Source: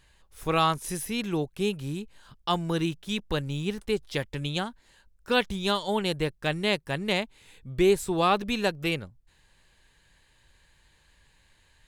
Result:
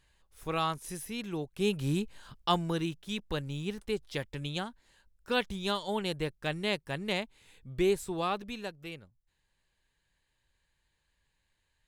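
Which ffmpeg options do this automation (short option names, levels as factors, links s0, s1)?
-af "volume=1.58,afade=t=in:st=1.48:d=0.5:silence=0.266073,afade=t=out:st=1.98:d=0.83:silence=0.334965,afade=t=out:st=7.81:d=0.96:silence=0.334965"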